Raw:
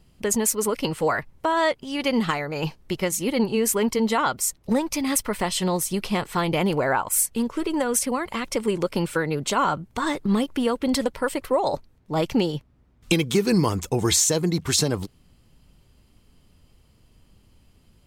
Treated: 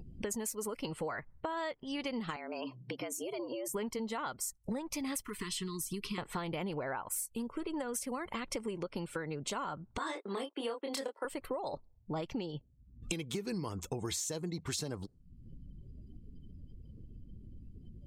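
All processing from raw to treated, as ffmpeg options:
-filter_complex "[0:a]asettb=1/sr,asplit=3[s0][s1][s2];[s0]atrim=end=2.364[s3];[s1]atrim=start=2.36:end=3.74,asetpts=PTS-STARTPTS,afade=t=in:d=0.004:c=qsin,afade=t=out:st=1.376:d=0.004:c=qsin,acompressor=threshold=0.0316:ratio=6:attack=3.2:release=140:knee=1:detection=peak,afreqshift=120[s4];[s2]atrim=start=3.736[s5];[s3][s4]acrossfade=d=0.004:c1=hsin:c2=qsin[s6];[s6][s5]acrossfade=d=0.004:c1=qsin:c2=hsin,asettb=1/sr,asplit=3[s7][s8][s9];[s7]atrim=end=5.244[s10];[s8]atrim=start=5.24:end=6.18,asetpts=PTS-STARTPTS,afade=t=in:d=0.004:c=qsin,afade=t=out:st=0.936:d=0.004:c=qsin,acrossover=split=87|3000[s11][s12][s13];[s11]acompressor=threshold=0.00501:ratio=4[s14];[s12]acompressor=threshold=0.0447:ratio=4[s15];[s13]acompressor=threshold=0.0398:ratio=4[s16];[s14][s15][s16]amix=inputs=3:normalize=0,volume=12.6,asoftclip=hard,volume=0.0794,asuperstop=centerf=660:order=20:qfactor=1.3[s17];[s9]atrim=start=6.176[s18];[s10][s17]acrossfade=d=0.004:c1=hsin:c2=qsin[s19];[s19][s18]acrossfade=d=0.004:c1=qsin:c2=hsin,asettb=1/sr,asplit=3[s20][s21][s22];[s20]atrim=end=9.984[s23];[s21]atrim=start=9.98:end=11.25,asetpts=PTS-STARTPTS,afade=t=in:d=0.004:c=qsin,afade=t=out:st=1.266:d=0.004:c=qsin,agate=range=0.0631:threshold=0.0141:ratio=16:release=100:detection=peak,highpass=f=330:w=0.5412,highpass=f=330:w=1.3066,asplit=2[s24][s25];[s25]adelay=26,volume=0.631[s26];[s24][s26]amix=inputs=2:normalize=0,atrim=end_sample=56007[s27];[s22]atrim=start=11.246[s28];[s23][s27]acrossfade=d=0.004:c1=hsin:c2=qsin[s29];[s29][s28]acrossfade=d=0.004:c1=qsin:c2=hsin,acompressor=mode=upward:threshold=0.02:ratio=2.5,afftdn=nr=31:nf=-46,acompressor=threshold=0.0251:ratio=6,volume=0.668"

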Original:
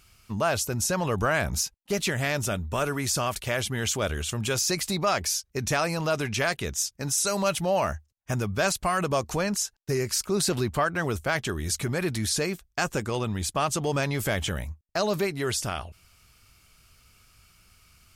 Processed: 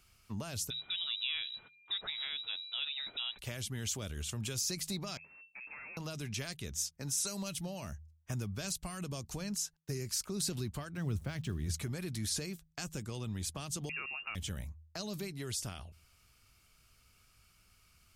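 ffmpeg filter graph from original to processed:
-filter_complex "[0:a]asettb=1/sr,asplit=3[s0][s1][s2];[s0]atrim=end=0.704[s3];[s1]atrim=start=0.7:end=3.39,asetpts=PTS-STARTPTS,afade=t=in:d=0.004:c=qsin,afade=t=out:st=2.686:d=0.004:c=qsin,lowshelf=f=76:g=-11.5,aeval=exprs='val(0)+0.00224*sin(2*PI*1600*n/s)':c=same,lowpass=f=3400:t=q:w=0.5098,lowpass=f=3400:t=q:w=0.6013,lowpass=f=3400:t=q:w=0.9,lowpass=f=3400:t=q:w=2.563,afreqshift=-4000[s4];[s2]atrim=start=3.386[s5];[s3][s4]acrossfade=d=0.004:c1=hsin:c2=qsin[s6];[s6][s5]acrossfade=d=0.004:c1=qsin:c2=hsin,asettb=1/sr,asplit=3[s7][s8][s9];[s7]atrim=end=5.174[s10];[s8]atrim=start=5.17:end=5.97,asetpts=PTS-STARTPTS,afade=t=in:d=0.004:c=qsin,afade=t=out:st=0.796:d=0.004:c=qsin,aeval=exprs='(tanh(70.8*val(0)+0.55)-tanh(0.55))/70.8':c=same,lowpass=f=2300:t=q:w=0.5098,lowpass=f=2300:t=q:w=0.6013,lowpass=f=2300:t=q:w=0.9,lowpass=f=2300:t=q:w=2.563,afreqshift=-2700[s11];[s9]atrim=start=5.966[s12];[s10][s11]acrossfade=d=0.004:c1=hsin:c2=qsin[s13];[s13][s12]acrossfade=d=0.004:c1=qsin:c2=hsin,asettb=1/sr,asplit=3[s14][s15][s16];[s14]atrim=end=10.974[s17];[s15]atrim=start=10.97:end=11.74,asetpts=PTS-STARTPTS,afade=t=in:d=0.004:c=qsin,afade=t=out:st=0.766:d=0.004:c=qsin,highpass=53,bass=f=250:g=7,treble=f=4000:g=-8,aeval=exprs='val(0)*gte(abs(val(0)),0.00531)':c=same[s18];[s16]atrim=start=11.736[s19];[s17][s18]acrossfade=d=0.004:c1=hsin:c2=qsin[s20];[s20][s19]acrossfade=d=0.004:c1=qsin:c2=hsin,asettb=1/sr,asplit=3[s21][s22][s23];[s21]atrim=end=13.894[s24];[s22]atrim=start=13.89:end=14.35,asetpts=PTS-STARTPTS,afade=t=in:d=0.004:c=qsin,afade=t=out:st=0.456:d=0.004:c=qsin,equalizer=f=1700:t=o:w=0.39:g=12,lowpass=f=2500:t=q:w=0.5098,lowpass=f=2500:t=q:w=0.6013,lowpass=f=2500:t=q:w=0.9,lowpass=f=2500:t=q:w=2.563,afreqshift=-2900[s25];[s23]atrim=start=14.346[s26];[s24][s25]acrossfade=d=0.004:c1=hsin:c2=qsin[s27];[s27][s26]acrossfade=d=0.004:c1=qsin:c2=hsin,bandreject=f=79.53:t=h:w=4,bandreject=f=159.06:t=h:w=4,acrossover=split=270|3000[s28][s29][s30];[s29]acompressor=threshold=0.0112:ratio=6[s31];[s28][s31][s30]amix=inputs=3:normalize=0,volume=0.398"

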